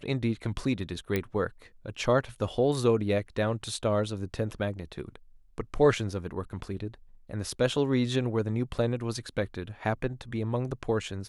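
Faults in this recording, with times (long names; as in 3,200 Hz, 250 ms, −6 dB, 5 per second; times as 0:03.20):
0:01.16: click −14 dBFS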